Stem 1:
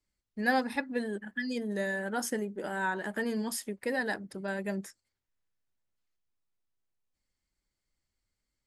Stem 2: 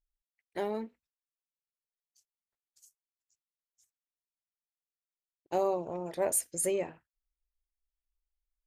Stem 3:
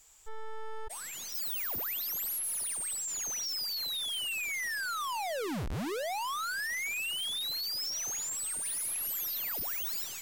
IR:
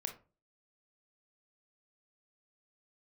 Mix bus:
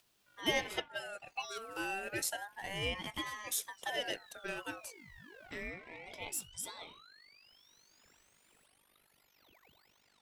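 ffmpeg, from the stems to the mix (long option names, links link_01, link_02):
-filter_complex "[0:a]bass=frequency=250:gain=-15,treble=frequency=4000:gain=15,volume=-1.5dB[link_01];[1:a]highpass=frequency=1000:width=0.5412,highpass=frequency=1000:width=1.3066,acompressor=mode=upward:threshold=-43dB:ratio=2.5,volume=2dB[link_02];[2:a]lowpass=frequency=2100:poles=1,aeval=exprs='clip(val(0),-1,0.01)':channel_layout=same,tremolo=f=49:d=0.75,volume=-11.5dB[link_03];[link_01][link_02][link_03]amix=inputs=3:normalize=0,bass=frequency=250:gain=-11,treble=frequency=4000:gain=-9,aeval=exprs='val(0)*sin(2*PI*1200*n/s+1200*0.25/0.31*sin(2*PI*0.31*n/s))':channel_layout=same"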